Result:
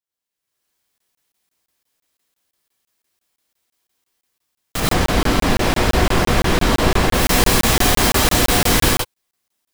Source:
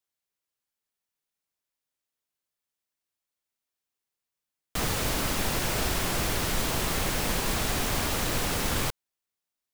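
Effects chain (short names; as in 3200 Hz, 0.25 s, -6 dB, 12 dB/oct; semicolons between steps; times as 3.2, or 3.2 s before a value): 4.8–7.14 LPF 2300 Hz 6 dB/oct; AGC gain up to 16.5 dB; non-linear reverb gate 0.15 s rising, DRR -5.5 dB; crackling interface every 0.17 s, samples 1024, zero, from 0.98; gain -7 dB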